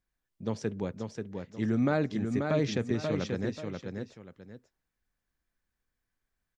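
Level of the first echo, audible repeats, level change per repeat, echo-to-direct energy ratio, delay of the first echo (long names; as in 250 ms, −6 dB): −5.0 dB, 2, −11.0 dB, −4.5 dB, 535 ms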